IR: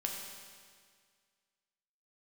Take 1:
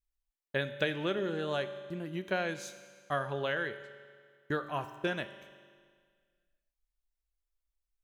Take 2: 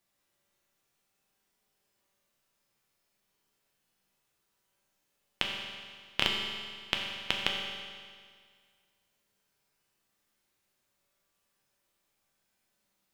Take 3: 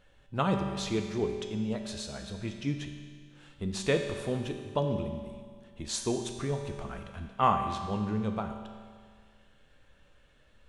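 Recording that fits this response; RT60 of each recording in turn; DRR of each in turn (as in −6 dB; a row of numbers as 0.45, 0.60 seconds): 2; 1.9, 1.9, 1.9 seconds; 9.5, −0.5, 4.0 decibels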